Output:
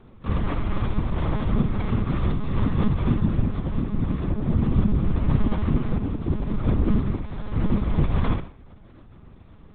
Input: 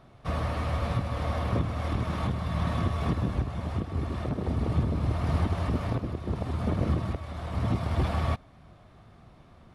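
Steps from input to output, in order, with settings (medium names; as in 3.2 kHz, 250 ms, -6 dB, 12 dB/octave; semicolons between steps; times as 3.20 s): resonant low shelf 380 Hz +6 dB, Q 1.5; on a send: flutter echo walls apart 9.3 m, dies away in 0.43 s; on the sum: monotone LPC vocoder at 8 kHz 210 Hz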